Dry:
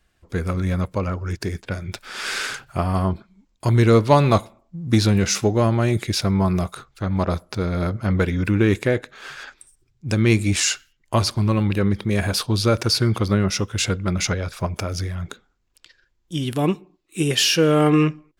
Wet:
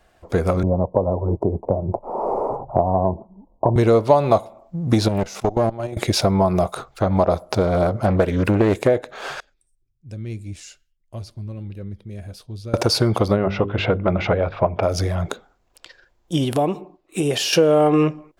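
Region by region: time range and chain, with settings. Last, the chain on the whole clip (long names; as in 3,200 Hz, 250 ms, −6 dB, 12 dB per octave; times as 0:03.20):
0:00.63–0:03.76: elliptic low-pass filter 980 Hz + multiband upward and downward compressor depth 40%
0:05.08–0:05.97: output level in coarse steps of 18 dB + tube saturation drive 19 dB, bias 0.8
0:07.50–0:08.89: high-shelf EQ 9,200 Hz +6 dB + highs frequency-modulated by the lows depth 0.32 ms
0:09.40–0:12.74: guitar amp tone stack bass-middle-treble 10-0-1 + flanger 1.2 Hz, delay 1.3 ms, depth 2.7 ms, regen +84%
0:13.36–0:14.83: low-pass filter 2,900 Hz 24 dB per octave + mains-hum notches 50/100/150/200/250/300/350/400 Hz
0:16.44–0:17.53: downward compressor 4 to 1, threshold −25 dBFS + one half of a high-frequency compander decoder only
whole clip: parametric band 670 Hz +14 dB 1.4 octaves; downward compressor 3 to 1, threshold −20 dBFS; dynamic equaliser 1,700 Hz, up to −4 dB, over −42 dBFS, Q 1.4; level +4.5 dB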